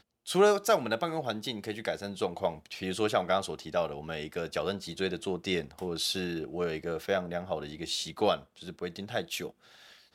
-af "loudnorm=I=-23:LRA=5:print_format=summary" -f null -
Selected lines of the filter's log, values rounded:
Input Integrated:    -32.2 LUFS
Input True Peak:     -12.4 dBTP
Input LRA:             4.7 LU
Input Threshold:     -42.5 LUFS